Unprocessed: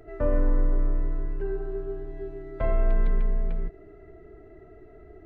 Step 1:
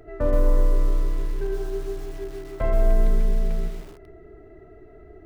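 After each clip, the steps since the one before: lo-fi delay 0.127 s, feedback 35%, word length 7-bit, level -7.5 dB; gain +2 dB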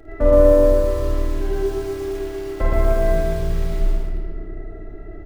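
on a send: loudspeakers at several distances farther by 18 m -5 dB, 40 m -1 dB; on the sum: shoebox room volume 3200 m³, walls mixed, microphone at 2.3 m; gain +1.5 dB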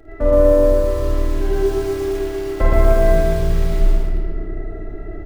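vocal rider within 4 dB 2 s; gain +1.5 dB

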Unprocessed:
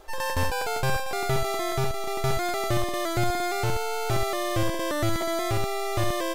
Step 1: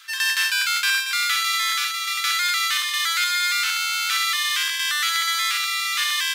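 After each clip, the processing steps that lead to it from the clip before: steep high-pass 1300 Hz 48 dB/oct; bell 3400 Hz +7 dB 1.6 oct; gain +8.5 dB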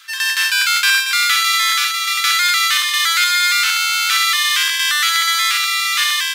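AGC gain up to 4 dB; gain +3 dB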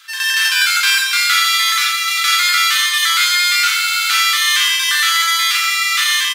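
reverse bouncing-ball echo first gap 40 ms, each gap 1.15×, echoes 5; gain -1 dB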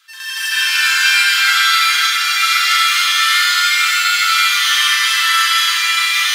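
flange 0.49 Hz, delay 6.8 ms, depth 6 ms, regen +63%; reverb RT60 4.2 s, pre-delay 0.11 s, DRR -11.5 dB; gain -5.5 dB

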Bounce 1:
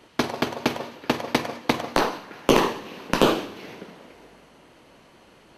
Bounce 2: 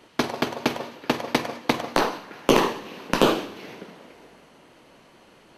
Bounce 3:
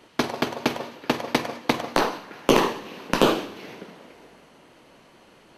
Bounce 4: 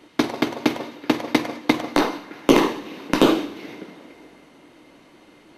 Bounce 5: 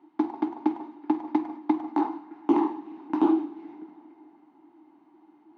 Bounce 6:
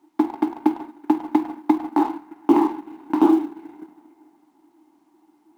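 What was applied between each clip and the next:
bell 63 Hz -6.5 dB 1.1 oct
nothing audible
small resonant body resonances 300/2100/3700 Hz, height 10 dB, ringing for 45 ms
double band-pass 520 Hz, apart 1.4 oct
G.711 law mismatch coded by A; gain +6.5 dB

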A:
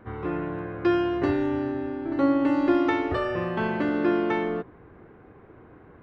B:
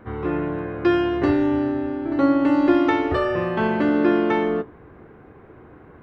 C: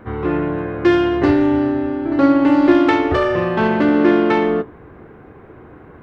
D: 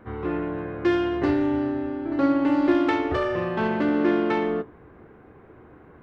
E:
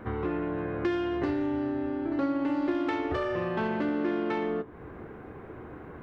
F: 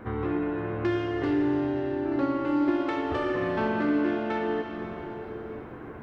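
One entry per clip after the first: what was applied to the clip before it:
resonator 73 Hz, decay 0.18 s, harmonics all, mix 50%; gain +7 dB
self-modulated delay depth 0.11 ms; gain +5 dB
de-hum 48.51 Hz, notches 3; gain -8 dB
compressor 3:1, threshold -36 dBFS, peak gain reduction 15.5 dB; gain +5.5 dB
plate-style reverb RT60 4 s, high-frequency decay 1×, DRR 2 dB

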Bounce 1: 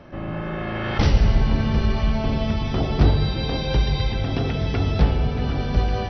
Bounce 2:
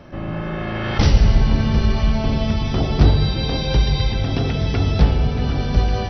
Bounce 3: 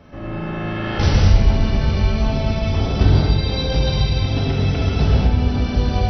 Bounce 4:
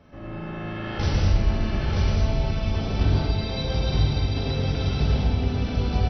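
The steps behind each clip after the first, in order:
tone controls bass +2 dB, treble +6 dB; gain +1.5 dB
non-linear reverb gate 0.27 s flat, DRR -4.5 dB; gain -5.5 dB
echo 0.934 s -4 dB; gain -7.5 dB

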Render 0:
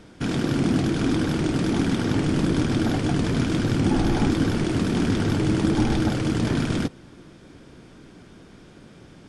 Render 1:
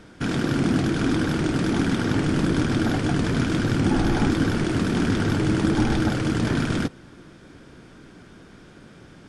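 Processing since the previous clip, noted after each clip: bell 1500 Hz +4.5 dB 0.68 oct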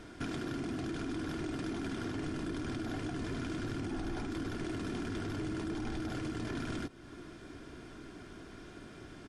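comb 2.9 ms, depth 43%; limiter -18 dBFS, peak gain reduction 11 dB; compressor 2:1, threshold -39 dBFS, peak gain reduction 9.5 dB; gain -3 dB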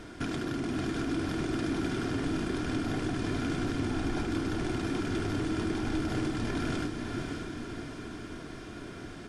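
diffused feedback echo 0.558 s, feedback 54%, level -4 dB; gain +4.5 dB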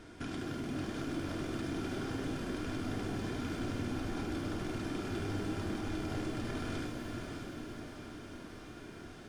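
shimmer reverb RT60 1.2 s, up +12 st, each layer -8 dB, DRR 4.5 dB; gain -7.5 dB

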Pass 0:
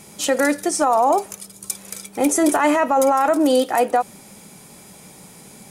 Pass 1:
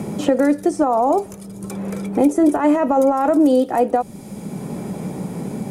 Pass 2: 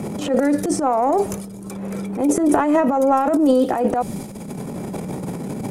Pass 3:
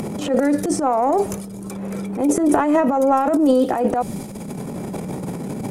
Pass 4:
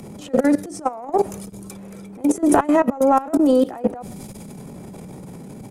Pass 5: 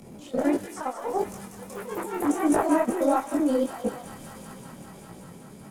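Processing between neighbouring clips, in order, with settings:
tilt shelf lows +10 dB, about 790 Hz; three-band squash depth 70%; gain -2 dB
transient shaper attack -11 dB, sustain +10 dB; gain -1 dB
upward compressor, threshold -27 dBFS
echo 0.13 s -23 dB; level quantiser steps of 17 dB; three-band expander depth 40%; gain +2.5 dB
echoes that change speed 85 ms, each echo +3 st, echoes 3, each echo -6 dB; thin delay 0.192 s, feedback 85%, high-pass 1800 Hz, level -7 dB; detuned doubles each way 54 cents; gain -4.5 dB

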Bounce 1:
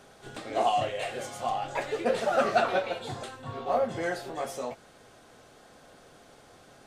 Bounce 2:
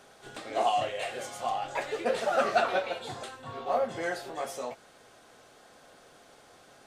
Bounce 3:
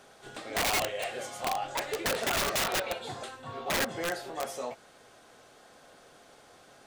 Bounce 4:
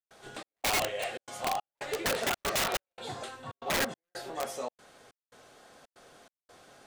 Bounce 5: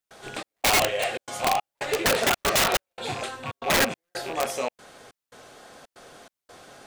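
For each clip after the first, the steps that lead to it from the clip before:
low shelf 280 Hz -8 dB
wrapped overs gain 23 dB
step gate ".xxx..xxxxx" 141 bpm -60 dB
rattling part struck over -50 dBFS, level -33 dBFS; gain +8 dB

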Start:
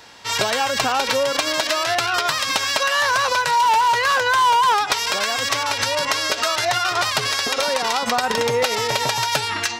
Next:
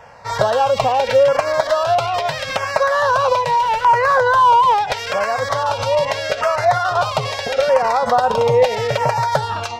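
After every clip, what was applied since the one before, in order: EQ curve 150 Hz 0 dB, 330 Hz -18 dB, 520 Hz +2 dB, 9900 Hz -21 dB; LFO notch saw down 0.78 Hz 910–4100 Hz; gain +8.5 dB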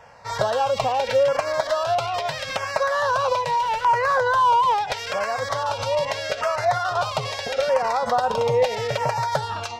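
bell 6200 Hz +2.5 dB 2.2 oct; gain -6 dB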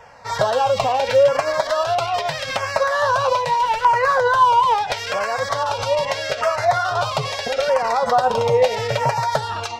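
flange 0.52 Hz, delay 1.9 ms, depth 9.9 ms, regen +59%; gain +7.5 dB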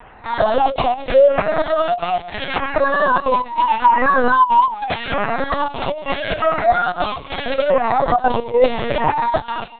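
HPF 130 Hz 6 dB/oct; step gate "xxxxxxxxx.xx..xx" 193 bpm -12 dB; LPC vocoder at 8 kHz pitch kept; gain +3 dB

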